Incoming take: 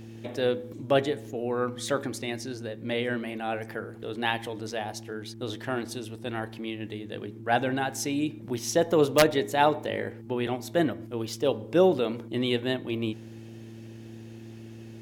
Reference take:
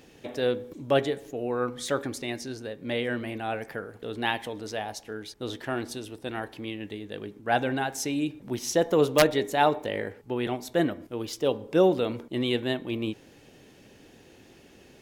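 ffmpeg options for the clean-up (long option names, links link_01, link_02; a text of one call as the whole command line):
ffmpeg -i in.wav -af "bandreject=frequency=112.8:width_type=h:width=4,bandreject=frequency=225.6:width_type=h:width=4,bandreject=frequency=338.4:width_type=h:width=4" out.wav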